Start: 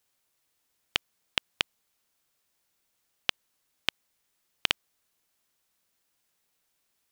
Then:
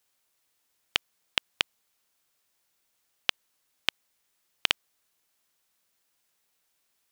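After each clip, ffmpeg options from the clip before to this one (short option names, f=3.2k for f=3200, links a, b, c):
-af "lowshelf=f=340:g=-4.5,volume=1.5dB"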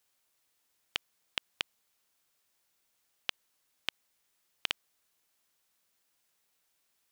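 -af "alimiter=limit=-8dB:level=0:latency=1:release=41,volume=-1.5dB"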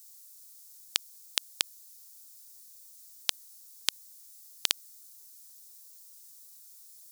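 -af "aexciter=amount=4.1:drive=9.7:freq=4.1k,volume=1.5dB"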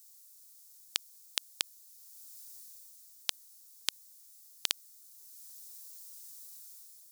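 -af "dynaudnorm=f=150:g=7:m=7.5dB,volume=-4.5dB"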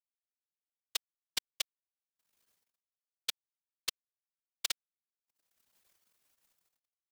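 -af "aeval=exprs='sgn(val(0))*max(abs(val(0))-0.00708,0)':c=same,afftfilt=real='hypot(re,im)*cos(2*PI*random(0))':imag='hypot(re,im)*sin(2*PI*random(1))':win_size=512:overlap=0.75,volume=4dB"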